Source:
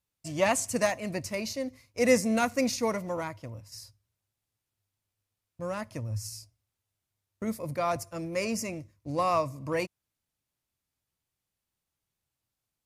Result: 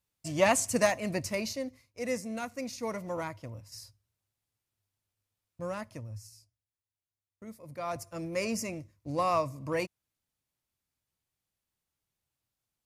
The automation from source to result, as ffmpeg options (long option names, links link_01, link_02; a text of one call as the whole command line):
ffmpeg -i in.wav -af "volume=22dB,afade=type=out:start_time=1.31:duration=0.69:silence=0.266073,afade=type=in:start_time=2.71:duration=0.5:silence=0.354813,afade=type=out:start_time=5.64:duration=0.65:silence=0.251189,afade=type=in:start_time=7.64:duration=0.6:silence=0.251189" out.wav